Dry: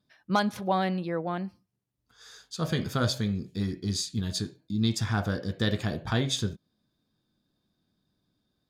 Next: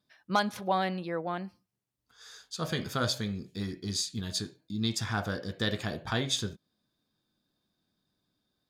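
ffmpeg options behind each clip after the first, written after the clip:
ffmpeg -i in.wav -af "lowshelf=frequency=350:gain=-7" out.wav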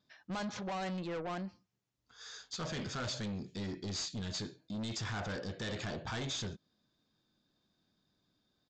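ffmpeg -i in.wav -af "alimiter=limit=-22dB:level=0:latency=1:release=27,aresample=16000,asoftclip=type=tanh:threshold=-37dB,aresample=44100,volume=1.5dB" out.wav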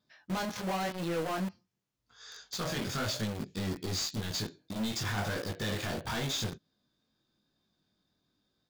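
ffmpeg -i in.wav -filter_complex "[0:a]flanger=delay=18:depth=4.5:speed=0.92,asplit=2[link_01][link_02];[link_02]acrusher=bits=6:mix=0:aa=0.000001,volume=-3dB[link_03];[link_01][link_03]amix=inputs=2:normalize=0,volume=3dB" out.wav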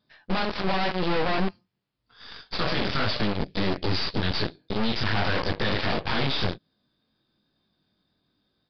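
ffmpeg -i in.wav -af "aeval=exprs='0.0708*(cos(1*acos(clip(val(0)/0.0708,-1,1)))-cos(1*PI/2))+0.0251*(cos(8*acos(clip(val(0)/0.0708,-1,1)))-cos(8*PI/2))':channel_layout=same,aresample=11025,aresample=44100,volume=5dB" out.wav

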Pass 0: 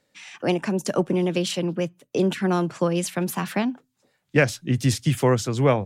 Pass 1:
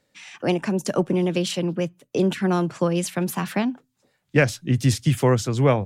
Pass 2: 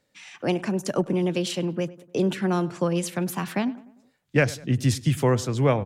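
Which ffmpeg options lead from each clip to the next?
ffmpeg -i in.wav -af "lowshelf=frequency=100:gain=6" out.wav
ffmpeg -i in.wav -filter_complex "[0:a]asplit=2[link_01][link_02];[link_02]adelay=100,lowpass=frequency=2300:poles=1,volume=-18.5dB,asplit=2[link_03][link_04];[link_04]adelay=100,lowpass=frequency=2300:poles=1,volume=0.47,asplit=2[link_05][link_06];[link_06]adelay=100,lowpass=frequency=2300:poles=1,volume=0.47,asplit=2[link_07][link_08];[link_08]adelay=100,lowpass=frequency=2300:poles=1,volume=0.47[link_09];[link_01][link_03][link_05][link_07][link_09]amix=inputs=5:normalize=0,volume=-2.5dB" out.wav

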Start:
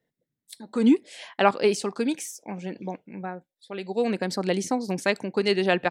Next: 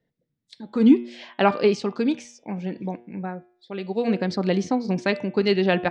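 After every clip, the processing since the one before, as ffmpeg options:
ffmpeg -i in.wav -af "lowpass=frequency=5400:width=0.5412,lowpass=frequency=5400:width=1.3066,lowshelf=frequency=240:gain=9,bandreject=frequency=119.4:width_type=h:width=4,bandreject=frequency=238.8:width_type=h:width=4,bandreject=frequency=358.2:width_type=h:width=4,bandreject=frequency=477.6:width_type=h:width=4,bandreject=frequency=597:width_type=h:width=4,bandreject=frequency=716.4:width_type=h:width=4,bandreject=frequency=835.8:width_type=h:width=4,bandreject=frequency=955.2:width_type=h:width=4,bandreject=frequency=1074.6:width_type=h:width=4,bandreject=frequency=1194:width_type=h:width=4,bandreject=frequency=1313.4:width_type=h:width=4,bandreject=frequency=1432.8:width_type=h:width=4,bandreject=frequency=1552.2:width_type=h:width=4,bandreject=frequency=1671.6:width_type=h:width=4,bandreject=frequency=1791:width_type=h:width=4,bandreject=frequency=1910.4:width_type=h:width=4,bandreject=frequency=2029.8:width_type=h:width=4,bandreject=frequency=2149.2:width_type=h:width=4,bandreject=frequency=2268.6:width_type=h:width=4,bandreject=frequency=2388:width_type=h:width=4,bandreject=frequency=2507.4:width_type=h:width=4,bandreject=frequency=2626.8:width_type=h:width=4,bandreject=frequency=2746.2:width_type=h:width=4,bandreject=frequency=2865.6:width_type=h:width=4,bandreject=frequency=2985:width_type=h:width=4,bandreject=frequency=3104.4:width_type=h:width=4,bandreject=frequency=3223.8:width_type=h:width=4,bandreject=frequency=3343.2:width_type=h:width=4,bandreject=frequency=3462.6:width_type=h:width=4,bandreject=frequency=3582:width_type=h:width=4,bandreject=frequency=3701.4:width_type=h:width=4" out.wav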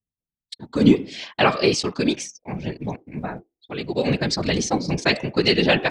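ffmpeg -i in.wav -af "anlmdn=0.0631,afftfilt=real='hypot(re,im)*cos(2*PI*random(0))':imag='hypot(re,im)*sin(2*PI*random(1))':win_size=512:overlap=0.75,crystalizer=i=5.5:c=0,volume=6dB" out.wav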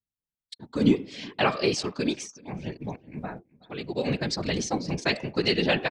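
ffmpeg -i in.wav -filter_complex "[0:a]asplit=2[link_01][link_02];[link_02]adelay=373.2,volume=-23dB,highshelf=frequency=4000:gain=-8.4[link_03];[link_01][link_03]amix=inputs=2:normalize=0,volume=-6dB" out.wav

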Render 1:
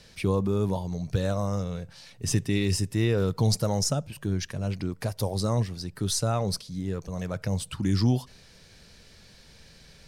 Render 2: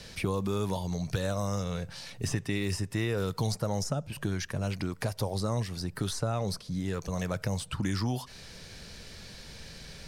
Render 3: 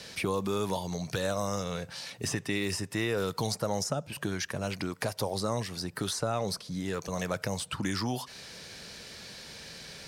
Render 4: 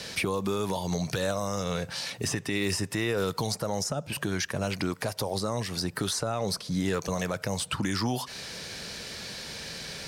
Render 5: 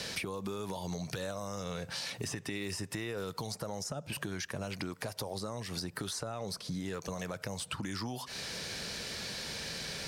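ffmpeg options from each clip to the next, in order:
ffmpeg -i in.wav -filter_complex "[0:a]acrossover=split=730|1800|7600[link_01][link_02][link_03][link_04];[link_01]acompressor=threshold=-37dB:ratio=4[link_05];[link_02]acompressor=threshold=-46dB:ratio=4[link_06];[link_03]acompressor=threshold=-49dB:ratio=4[link_07];[link_04]acompressor=threshold=-55dB:ratio=4[link_08];[link_05][link_06][link_07][link_08]amix=inputs=4:normalize=0,volume=6.5dB" out.wav
ffmpeg -i in.wav -af "highpass=frequency=270:poles=1,volume=3dB" out.wav
ffmpeg -i in.wav -af "alimiter=level_in=0.5dB:limit=-24dB:level=0:latency=1:release=204,volume=-0.5dB,volume=6.5dB" out.wav
ffmpeg -i in.wav -af "acompressor=threshold=-35dB:ratio=6" out.wav

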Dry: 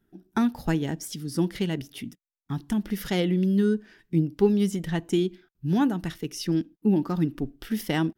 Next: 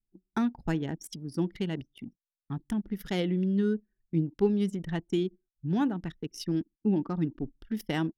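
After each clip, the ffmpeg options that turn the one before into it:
ffmpeg -i in.wav -af "anlmdn=3.98,volume=-4.5dB" out.wav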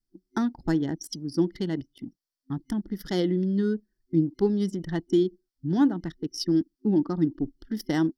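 ffmpeg -i in.wav -af "superequalizer=6b=2:12b=0.282:14b=2.51,volume=1.5dB" out.wav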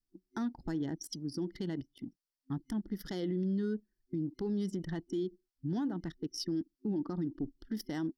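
ffmpeg -i in.wav -af "alimiter=limit=-22.5dB:level=0:latency=1:release=47,volume=-5dB" out.wav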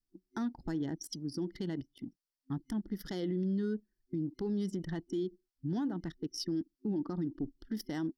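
ffmpeg -i in.wav -af anull out.wav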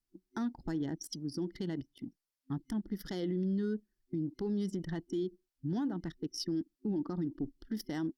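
ffmpeg -i in.wav -ar 48000 -c:a libopus -b:a 96k out.opus

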